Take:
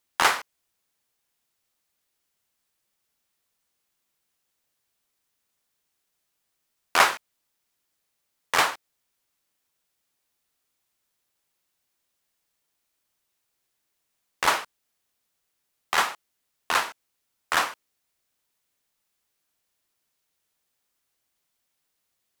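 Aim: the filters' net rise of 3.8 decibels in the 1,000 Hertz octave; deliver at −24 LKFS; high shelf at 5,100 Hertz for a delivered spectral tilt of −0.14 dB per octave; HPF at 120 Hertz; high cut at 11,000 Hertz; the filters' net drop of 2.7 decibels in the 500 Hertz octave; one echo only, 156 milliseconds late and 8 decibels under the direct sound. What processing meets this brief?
high-pass filter 120 Hz
low-pass filter 11,000 Hz
parametric band 500 Hz −6.5 dB
parametric band 1,000 Hz +6.5 dB
high-shelf EQ 5,100 Hz −7.5 dB
single-tap delay 156 ms −8 dB
level −0.5 dB

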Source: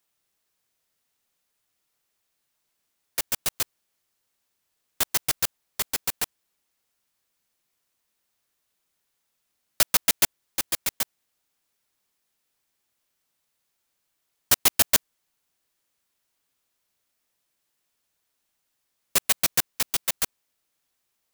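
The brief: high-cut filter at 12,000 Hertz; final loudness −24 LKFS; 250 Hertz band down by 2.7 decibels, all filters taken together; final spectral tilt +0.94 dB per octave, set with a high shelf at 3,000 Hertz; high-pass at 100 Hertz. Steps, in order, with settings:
high-pass filter 100 Hz
low-pass filter 12,000 Hz
parametric band 250 Hz −3.5 dB
high-shelf EQ 3,000 Hz +8 dB
level −3 dB

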